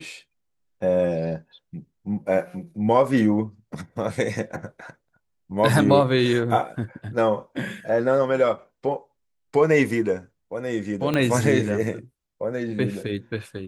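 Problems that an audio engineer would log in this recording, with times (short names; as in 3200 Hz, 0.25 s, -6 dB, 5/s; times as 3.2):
11.14 pop -11 dBFS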